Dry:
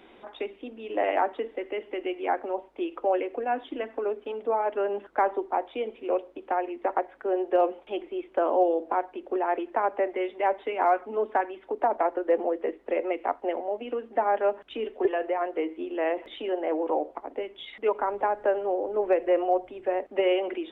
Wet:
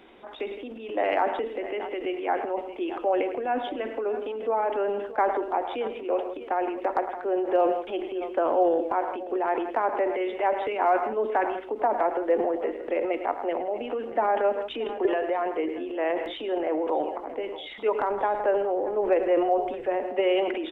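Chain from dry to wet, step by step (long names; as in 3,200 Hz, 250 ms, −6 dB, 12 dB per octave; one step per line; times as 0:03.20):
multi-tap delay 106/164/628 ms −17.5/−18/−19.5 dB
transient designer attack 0 dB, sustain +8 dB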